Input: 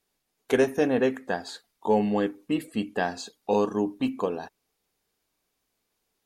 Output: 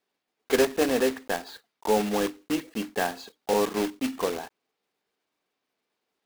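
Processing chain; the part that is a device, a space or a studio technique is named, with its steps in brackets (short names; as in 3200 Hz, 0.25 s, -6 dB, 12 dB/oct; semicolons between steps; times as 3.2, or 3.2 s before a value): early digital voice recorder (BPF 230–3700 Hz; block floating point 3-bit)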